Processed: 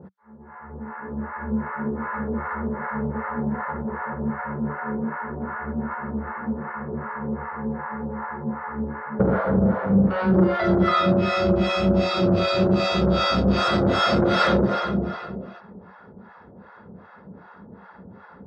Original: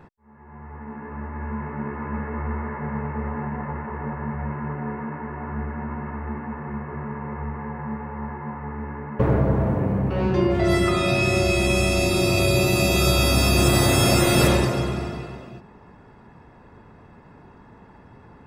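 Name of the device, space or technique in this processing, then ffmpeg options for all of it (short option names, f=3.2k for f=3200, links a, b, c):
guitar amplifier with harmonic tremolo: -filter_complex "[0:a]acrossover=split=630[a][b];[a]aeval=exprs='val(0)*(1-1/2+1/2*cos(2*PI*2.6*n/s))':c=same[c];[b]aeval=exprs='val(0)*(1-1/2-1/2*cos(2*PI*2.6*n/s))':c=same[d];[c][d]amix=inputs=2:normalize=0,asoftclip=type=tanh:threshold=-20dB,highpass=90,equalizer=f=130:t=q:w=4:g=-10,equalizer=f=190:t=q:w=4:g=10,equalizer=f=290:t=q:w=4:g=-5,equalizer=f=520:t=q:w=4:g=6,equalizer=f=1.4k:t=q:w=4:g=9,equalizer=f=2.6k:t=q:w=4:g=-9,lowpass=f=4.3k:w=0.5412,lowpass=f=4.3k:w=1.3066,volume=6dB"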